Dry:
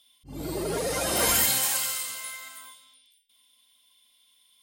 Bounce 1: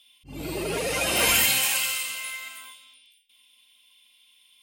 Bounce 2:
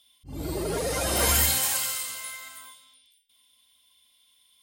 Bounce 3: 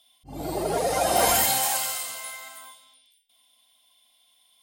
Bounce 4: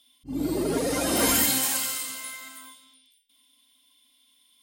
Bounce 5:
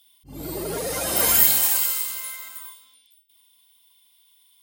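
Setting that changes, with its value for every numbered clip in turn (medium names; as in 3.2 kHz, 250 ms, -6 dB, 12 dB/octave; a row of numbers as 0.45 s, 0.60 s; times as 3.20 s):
peaking EQ, frequency: 2.6 kHz, 74 Hz, 740 Hz, 270 Hz, 16 kHz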